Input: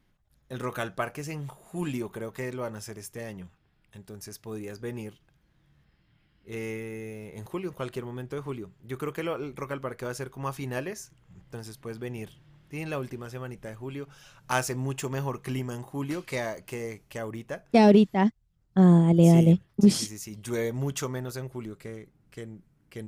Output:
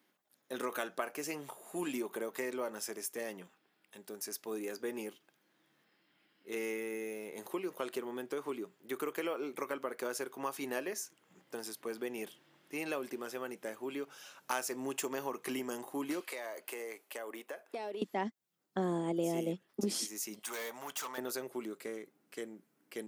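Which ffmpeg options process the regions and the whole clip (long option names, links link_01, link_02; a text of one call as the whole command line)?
ffmpeg -i in.wav -filter_complex "[0:a]asettb=1/sr,asplit=3[link_01][link_02][link_03];[link_01]atrim=end=16.204[link_04];[link_02]atrim=start=16.2:end=18.02,asetpts=PTS-STARTPTS,afade=type=in:duration=0.004:curve=qsin,afade=type=out:start_time=1.816:duration=0.004:curve=qsin,highpass=420,equalizer=frequency=5900:width_type=o:width=0.64:gain=-6,acompressor=threshold=-38dB:ratio=6:attack=3.2:release=140:knee=1:detection=peak[link_05];[link_03]atrim=start=18.016[link_06];[link_04][link_05]acrossfade=duration=0.004:curve1=hsin:curve2=qsin[link_07];[link_07][link_06]acrossfade=duration=0.004:curve1=qsin:curve2=hsin,asettb=1/sr,asplit=3[link_08][link_09][link_10];[link_08]atrim=end=20.394[link_11];[link_09]atrim=start=20.39:end=21.18,asetpts=PTS-STARTPTS,afade=type=in:duration=0.004:curve=qsin,afade=type=out:start_time=0.786:duration=0.004:curve=qsin,lowshelf=frequency=550:width_type=q:width=1.5:gain=-12.5,asoftclip=type=hard:threshold=-37.5dB[link_12];[link_10]atrim=start=21.176[link_13];[link_11][link_12]acrossfade=duration=0.004:curve1=hsin:curve2=qsin[link_14];[link_14][link_13]acrossfade=duration=0.004:curve1=qsin:curve2=hsin,highpass=frequency=260:width=0.5412,highpass=frequency=260:width=1.3066,highshelf=frequency=11000:gain=9,acompressor=threshold=-34dB:ratio=3" out.wav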